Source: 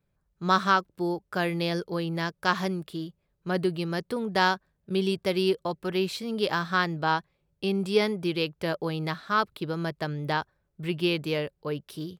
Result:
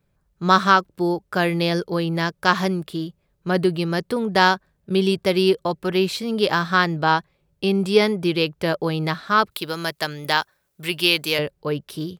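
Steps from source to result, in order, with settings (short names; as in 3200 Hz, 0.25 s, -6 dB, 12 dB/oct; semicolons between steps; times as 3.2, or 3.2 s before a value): 9.51–11.39 tilt +3.5 dB/oct; gain +7 dB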